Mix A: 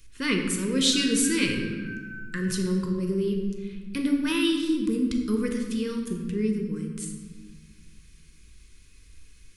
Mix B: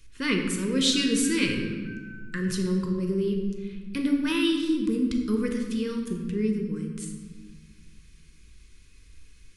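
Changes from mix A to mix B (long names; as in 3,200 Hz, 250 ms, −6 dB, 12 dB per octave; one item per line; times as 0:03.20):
background: send off
master: add high-shelf EQ 8,800 Hz −7 dB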